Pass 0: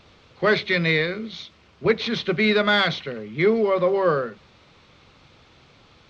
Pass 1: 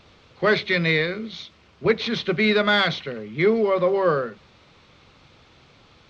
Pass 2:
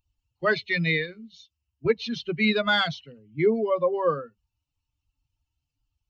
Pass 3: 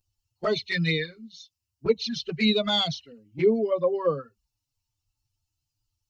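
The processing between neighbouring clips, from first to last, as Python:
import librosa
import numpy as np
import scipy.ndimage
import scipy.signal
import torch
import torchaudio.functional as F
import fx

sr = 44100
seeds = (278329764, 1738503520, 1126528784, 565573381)

y1 = x
y2 = fx.bin_expand(y1, sr, power=2.0)
y3 = fx.high_shelf_res(y2, sr, hz=3700.0, db=7.0, q=1.5)
y3 = fx.env_flanger(y3, sr, rest_ms=9.2, full_db=-20.0)
y3 = y3 * librosa.db_to_amplitude(1.5)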